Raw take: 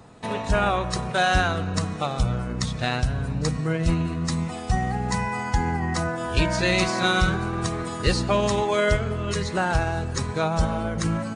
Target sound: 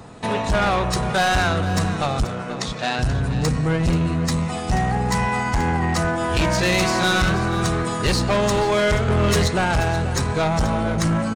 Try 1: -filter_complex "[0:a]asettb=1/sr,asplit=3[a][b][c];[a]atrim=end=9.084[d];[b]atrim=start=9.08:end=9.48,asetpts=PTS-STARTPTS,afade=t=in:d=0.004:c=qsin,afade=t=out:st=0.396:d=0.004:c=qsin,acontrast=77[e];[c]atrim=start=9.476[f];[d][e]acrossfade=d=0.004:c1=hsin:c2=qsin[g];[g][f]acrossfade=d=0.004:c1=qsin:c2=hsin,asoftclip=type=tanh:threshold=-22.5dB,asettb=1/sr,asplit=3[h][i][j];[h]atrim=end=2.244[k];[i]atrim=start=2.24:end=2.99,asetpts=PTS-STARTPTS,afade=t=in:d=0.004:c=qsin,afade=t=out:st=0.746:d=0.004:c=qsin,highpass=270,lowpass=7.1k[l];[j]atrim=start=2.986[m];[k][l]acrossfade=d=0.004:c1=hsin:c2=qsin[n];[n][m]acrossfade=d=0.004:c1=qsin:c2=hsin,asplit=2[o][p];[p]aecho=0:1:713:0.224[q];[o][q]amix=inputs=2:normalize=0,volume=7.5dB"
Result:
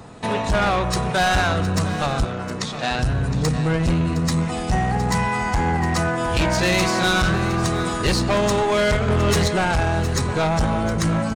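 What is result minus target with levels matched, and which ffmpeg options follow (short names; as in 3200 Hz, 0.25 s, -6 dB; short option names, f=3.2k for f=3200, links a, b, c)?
echo 0.231 s late
-filter_complex "[0:a]asettb=1/sr,asplit=3[a][b][c];[a]atrim=end=9.084[d];[b]atrim=start=9.08:end=9.48,asetpts=PTS-STARTPTS,afade=t=in:d=0.004:c=qsin,afade=t=out:st=0.396:d=0.004:c=qsin,acontrast=77[e];[c]atrim=start=9.476[f];[d][e]acrossfade=d=0.004:c1=hsin:c2=qsin[g];[g][f]acrossfade=d=0.004:c1=qsin:c2=hsin,asoftclip=type=tanh:threshold=-22.5dB,asettb=1/sr,asplit=3[h][i][j];[h]atrim=end=2.244[k];[i]atrim=start=2.24:end=2.99,asetpts=PTS-STARTPTS,afade=t=in:d=0.004:c=qsin,afade=t=out:st=0.746:d=0.004:c=qsin,highpass=270,lowpass=7.1k[l];[j]atrim=start=2.986[m];[k][l]acrossfade=d=0.004:c1=hsin:c2=qsin[n];[n][m]acrossfade=d=0.004:c1=qsin:c2=hsin,asplit=2[o][p];[p]aecho=0:1:482:0.224[q];[o][q]amix=inputs=2:normalize=0,volume=7.5dB"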